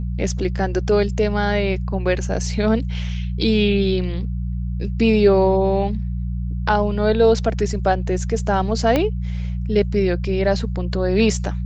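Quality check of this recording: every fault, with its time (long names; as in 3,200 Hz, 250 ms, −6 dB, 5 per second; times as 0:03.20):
mains hum 60 Hz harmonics 3 −24 dBFS
0:08.96: click −6 dBFS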